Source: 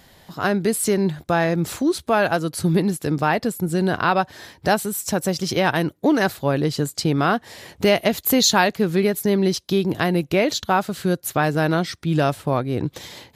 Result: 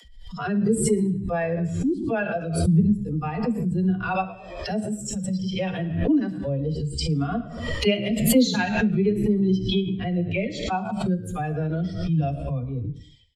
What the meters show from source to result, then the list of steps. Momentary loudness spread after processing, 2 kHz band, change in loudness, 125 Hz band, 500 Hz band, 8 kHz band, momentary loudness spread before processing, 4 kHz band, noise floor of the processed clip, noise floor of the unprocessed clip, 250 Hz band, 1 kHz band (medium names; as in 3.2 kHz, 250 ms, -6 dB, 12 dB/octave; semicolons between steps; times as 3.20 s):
9 LU, -8.0 dB, -3.5 dB, 0.0 dB, -6.0 dB, -7.0 dB, 5 LU, -6.5 dB, -41 dBFS, -53 dBFS, -1.0 dB, -9.0 dB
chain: expander on every frequency bin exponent 2; low-pass 8.5 kHz 24 dB/octave; comb 4.2 ms, depth 39%; dynamic bell 2.4 kHz, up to +5 dB, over -50 dBFS, Q 5.7; harmonic-percussive split percussive -18 dB; peaking EQ 1.1 kHz -7.5 dB 1.8 oct; in parallel at +2 dB: compression, threshold -34 dBFS, peak gain reduction 18 dB; on the sum: phase dispersion lows, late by 50 ms, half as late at 310 Hz; on a send: frequency-shifting echo 112 ms, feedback 37%, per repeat -74 Hz, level -18 dB; on the sum: gated-style reverb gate 280 ms falling, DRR 9.5 dB; swell ahead of each attack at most 55 dB/s